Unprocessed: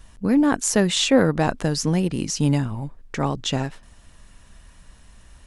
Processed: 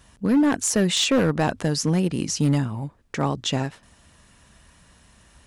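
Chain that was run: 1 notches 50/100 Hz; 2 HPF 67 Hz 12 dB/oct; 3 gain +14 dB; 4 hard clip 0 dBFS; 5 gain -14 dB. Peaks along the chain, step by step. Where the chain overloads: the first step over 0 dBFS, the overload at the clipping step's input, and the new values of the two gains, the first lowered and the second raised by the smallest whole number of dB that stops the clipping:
-4.5, -5.0, +9.0, 0.0, -14.0 dBFS; step 3, 9.0 dB; step 3 +5 dB, step 5 -5 dB

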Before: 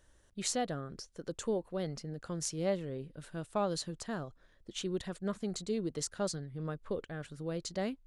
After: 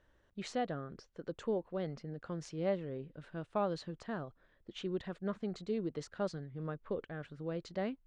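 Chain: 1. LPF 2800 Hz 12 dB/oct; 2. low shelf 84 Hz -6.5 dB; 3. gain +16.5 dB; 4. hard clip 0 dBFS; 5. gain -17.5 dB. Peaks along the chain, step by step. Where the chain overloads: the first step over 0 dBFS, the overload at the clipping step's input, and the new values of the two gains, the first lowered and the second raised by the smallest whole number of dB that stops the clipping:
-22.0, -21.5, -5.0, -5.0, -22.5 dBFS; no overload

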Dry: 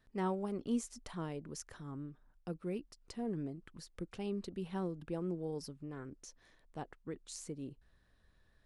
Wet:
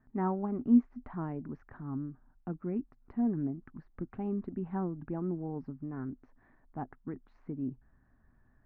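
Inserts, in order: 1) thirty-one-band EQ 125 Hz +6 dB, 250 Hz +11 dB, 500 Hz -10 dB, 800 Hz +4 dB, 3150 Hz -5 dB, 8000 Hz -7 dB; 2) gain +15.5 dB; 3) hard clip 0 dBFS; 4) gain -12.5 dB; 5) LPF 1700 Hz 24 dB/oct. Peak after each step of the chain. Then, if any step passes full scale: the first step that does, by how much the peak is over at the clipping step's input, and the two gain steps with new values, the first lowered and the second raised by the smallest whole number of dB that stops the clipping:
-17.5, -2.0, -2.0, -14.5, -14.5 dBFS; no overload

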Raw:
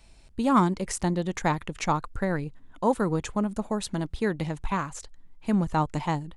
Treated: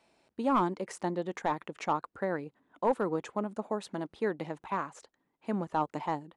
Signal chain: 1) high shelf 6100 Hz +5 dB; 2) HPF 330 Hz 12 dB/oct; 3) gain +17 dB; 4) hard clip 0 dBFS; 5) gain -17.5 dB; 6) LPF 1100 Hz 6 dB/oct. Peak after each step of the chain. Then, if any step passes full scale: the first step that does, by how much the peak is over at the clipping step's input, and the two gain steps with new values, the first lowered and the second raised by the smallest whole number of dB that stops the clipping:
-9.5, -10.0, +7.0, 0.0, -17.5, -17.5 dBFS; step 3, 7.0 dB; step 3 +10 dB, step 5 -10.5 dB

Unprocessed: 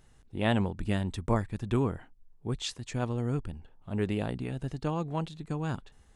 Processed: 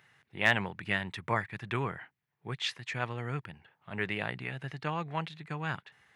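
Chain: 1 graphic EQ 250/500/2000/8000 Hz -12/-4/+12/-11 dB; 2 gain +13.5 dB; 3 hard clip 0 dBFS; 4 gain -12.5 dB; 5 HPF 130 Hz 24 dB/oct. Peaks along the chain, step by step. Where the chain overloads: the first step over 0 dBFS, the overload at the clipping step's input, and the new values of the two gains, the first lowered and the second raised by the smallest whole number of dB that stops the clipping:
-9.5, +4.0, 0.0, -12.5, -9.5 dBFS; step 2, 4.0 dB; step 2 +9.5 dB, step 4 -8.5 dB

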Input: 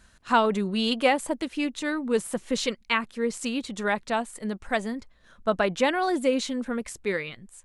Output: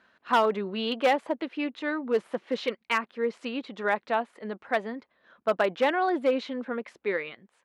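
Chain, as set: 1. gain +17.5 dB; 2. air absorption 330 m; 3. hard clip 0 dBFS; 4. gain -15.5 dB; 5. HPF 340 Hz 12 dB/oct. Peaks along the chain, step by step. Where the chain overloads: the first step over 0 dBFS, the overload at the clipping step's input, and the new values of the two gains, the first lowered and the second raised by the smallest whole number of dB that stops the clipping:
+9.0, +7.0, 0.0, -15.5, -10.5 dBFS; step 1, 7.0 dB; step 1 +10.5 dB, step 4 -8.5 dB

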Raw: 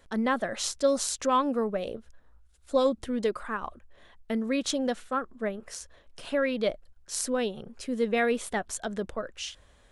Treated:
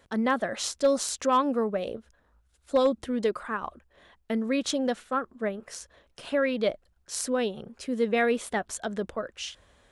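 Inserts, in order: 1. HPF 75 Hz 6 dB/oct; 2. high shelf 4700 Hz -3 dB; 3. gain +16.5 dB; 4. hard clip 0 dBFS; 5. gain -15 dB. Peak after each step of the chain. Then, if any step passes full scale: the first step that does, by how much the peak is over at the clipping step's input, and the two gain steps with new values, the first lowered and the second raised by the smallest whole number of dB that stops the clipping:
-10.5, -12.5, +4.0, 0.0, -15.0 dBFS; step 3, 4.0 dB; step 3 +12.5 dB, step 5 -11 dB

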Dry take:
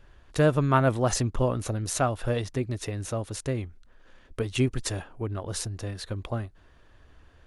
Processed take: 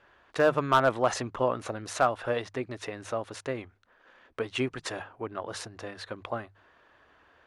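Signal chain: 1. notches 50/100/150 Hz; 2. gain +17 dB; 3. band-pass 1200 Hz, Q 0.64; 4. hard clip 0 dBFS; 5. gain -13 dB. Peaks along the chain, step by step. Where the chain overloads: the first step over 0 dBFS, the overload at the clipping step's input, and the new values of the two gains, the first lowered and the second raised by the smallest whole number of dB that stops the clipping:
-9.0, +8.0, +8.5, 0.0, -13.0 dBFS; step 2, 8.5 dB; step 2 +8 dB, step 5 -4 dB

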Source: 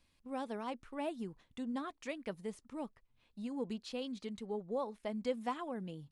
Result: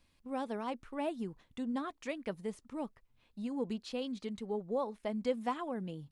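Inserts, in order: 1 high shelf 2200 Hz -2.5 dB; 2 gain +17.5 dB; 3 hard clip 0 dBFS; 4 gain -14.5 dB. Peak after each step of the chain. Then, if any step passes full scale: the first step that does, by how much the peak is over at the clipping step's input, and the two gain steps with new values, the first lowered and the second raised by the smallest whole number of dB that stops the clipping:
-23.5, -6.0, -6.0, -20.5 dBFS; no overload

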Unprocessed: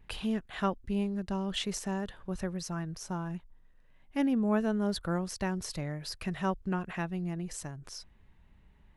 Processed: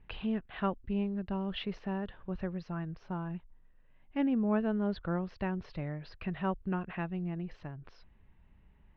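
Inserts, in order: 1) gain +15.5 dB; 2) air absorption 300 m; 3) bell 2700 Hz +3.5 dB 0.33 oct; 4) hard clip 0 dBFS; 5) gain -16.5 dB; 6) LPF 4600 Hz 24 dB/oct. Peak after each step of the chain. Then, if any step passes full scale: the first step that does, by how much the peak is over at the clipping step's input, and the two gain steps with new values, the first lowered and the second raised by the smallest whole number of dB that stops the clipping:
-1.5, -2.0, -2.0, -2.0, -18.5, -18.5 dBFS; no overload

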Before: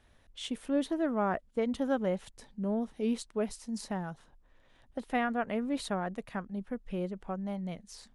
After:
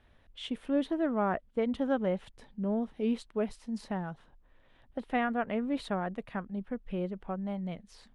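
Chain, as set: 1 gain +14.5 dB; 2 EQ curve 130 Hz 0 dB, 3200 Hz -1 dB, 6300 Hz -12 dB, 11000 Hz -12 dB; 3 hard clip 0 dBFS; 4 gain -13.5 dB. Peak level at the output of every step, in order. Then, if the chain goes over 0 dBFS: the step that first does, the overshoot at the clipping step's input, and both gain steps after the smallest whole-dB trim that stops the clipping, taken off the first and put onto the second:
-2.5, -3.0, -3.0, -16.5 dBFS; no overload

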